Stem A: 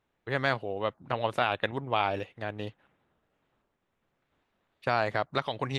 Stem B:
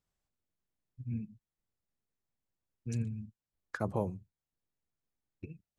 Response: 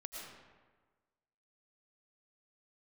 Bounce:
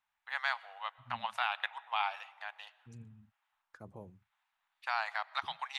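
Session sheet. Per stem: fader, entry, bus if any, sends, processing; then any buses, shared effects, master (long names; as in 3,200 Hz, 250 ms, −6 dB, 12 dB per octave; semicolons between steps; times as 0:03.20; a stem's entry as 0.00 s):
−4.0 dB, 0.00 s, send −15.5 dB, elliptic high-pass filter 820 Hz, stop band 60 dB
−16.5 dB, 0.00 s, no send, no processing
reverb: on, RT60 1.4 s, pre-delay 70 ms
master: no processing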